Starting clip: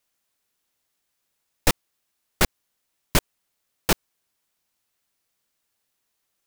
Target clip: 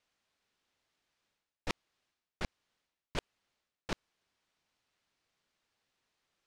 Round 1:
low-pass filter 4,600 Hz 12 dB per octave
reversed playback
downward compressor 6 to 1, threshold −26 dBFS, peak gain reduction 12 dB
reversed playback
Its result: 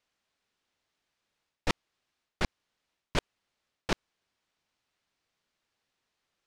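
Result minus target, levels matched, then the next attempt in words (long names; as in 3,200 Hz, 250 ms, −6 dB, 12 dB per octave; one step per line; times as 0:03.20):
downward compressor: peak gain reduction −8.5 dB
low-pass filter 4,600 Hz 12 dB per octave
reversed playback
downward compressor 6 to 1, threshold −36 dBFS, peak gain reduction 20.5 dB
reversed playback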